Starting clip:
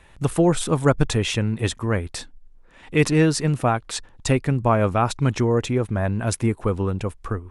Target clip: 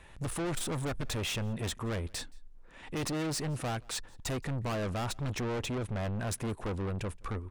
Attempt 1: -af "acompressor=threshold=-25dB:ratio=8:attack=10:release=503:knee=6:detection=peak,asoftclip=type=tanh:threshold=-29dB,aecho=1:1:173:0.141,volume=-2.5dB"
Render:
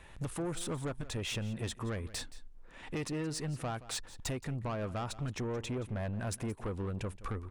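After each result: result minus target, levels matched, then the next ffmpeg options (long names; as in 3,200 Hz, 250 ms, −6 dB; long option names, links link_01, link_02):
downward compressor: peak gain reduction +15 dB; echo-to-direct +10.5 dB
-af "asoftclip=type=tanh:threshold=-29dB,aecho=1:1:173:0.141,volume=-2.5dB"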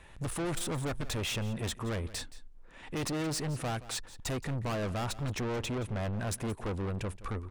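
echo-to-direct +10.5 dB
-af "asoftclip=type=tanh:threshold=-29dB,aecho=1:1:173:0.0422,volume=-2.5dB"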